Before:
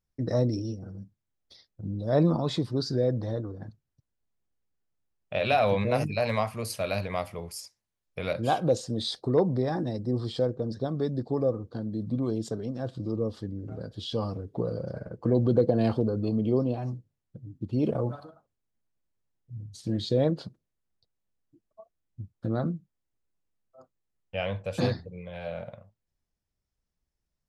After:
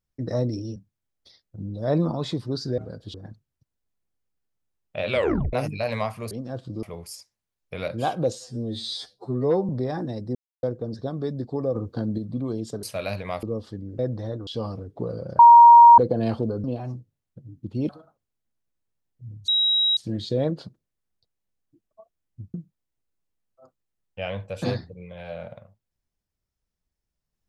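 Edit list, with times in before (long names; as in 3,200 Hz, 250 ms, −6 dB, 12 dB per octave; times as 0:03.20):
0:00.76–0:01.01: remove
0:03.03–0:03.51: swap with 0:13.69–0:14.05
0:05.48: tape stop 0.42 s
0:06.68–0:07.28: swap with 0:12.61–0:13.13
0:08.80–0:09.47: time-stretch 2×
0:10.13–0:10.41: silence
0:11.53–0:11.96: clip gain +6.5 dB
0:14.97–0:15.56: beep over 942 Hz −6 dBFS
0:16.22–0:16.62: remove
0:17.87–0:18.18: remove
0:19.77: insert tone 3,840 Hz −17.5 dBFS 0.49 s
0:22.34–0:22.70: remove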